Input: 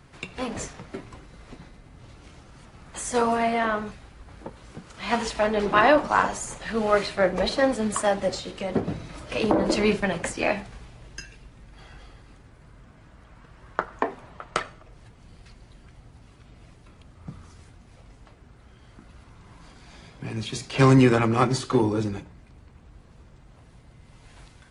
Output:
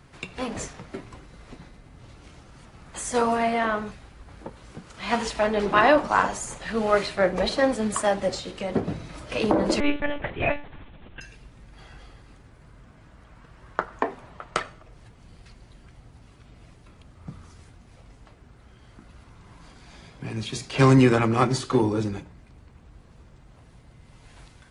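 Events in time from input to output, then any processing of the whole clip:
0:09.80–0:11.21: one-pitch LPC vocoder at 8 kHz 290 Hz

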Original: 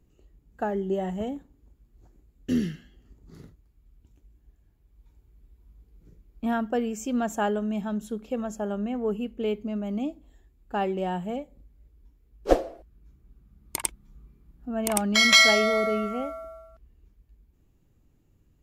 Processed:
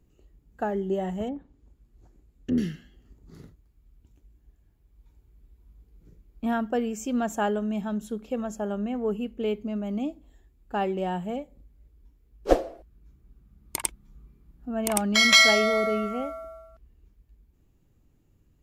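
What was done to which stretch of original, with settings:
0:01.28–0:02.58: treble cut that deepens with the level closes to 810 Hz, closed at −28.5 dBFS

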